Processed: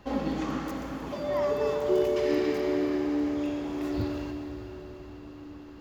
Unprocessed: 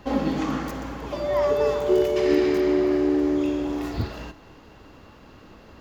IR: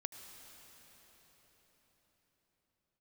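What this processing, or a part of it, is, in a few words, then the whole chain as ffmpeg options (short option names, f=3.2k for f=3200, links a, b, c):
cathedral: -filter_complex "[1:a]atrim=start_sample=2205[a];[0:a][a]afir=irnorm=-1:irlink=0,volume=-2.5dB"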